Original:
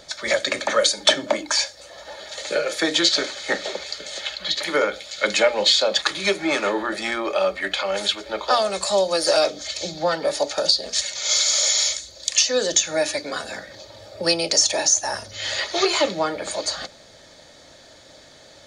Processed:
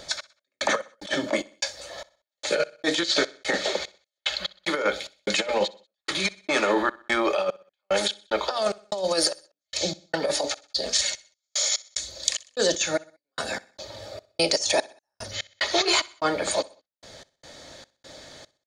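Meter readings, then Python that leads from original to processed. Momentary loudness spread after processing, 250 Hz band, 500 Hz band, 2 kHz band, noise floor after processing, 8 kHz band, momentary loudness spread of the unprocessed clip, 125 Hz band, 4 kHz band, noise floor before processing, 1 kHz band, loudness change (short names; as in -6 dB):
16 LU, -2.0 dB, -4.5 dB, -3.5 dB, under -85 dBFS, -7.5 dB, 12 LU, -1.5 dB, -6.0 dB, -48 dBFS, -4.0 dB, -5.0 dB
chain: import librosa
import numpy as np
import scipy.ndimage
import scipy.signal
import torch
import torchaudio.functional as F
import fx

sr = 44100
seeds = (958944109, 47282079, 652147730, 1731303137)

y = fx.over_compress(x, sr, threshold_db=-22.0, ratio=-0.5)
y = fx.step_gate(y, sr, bpm=74, pattern='x..x.xx.x', floor_db=-60.0, edge_ms=4.5)
y = fx.echo_feedback(y, sr, ms=63, feedback_pct=46, wet_db=-22)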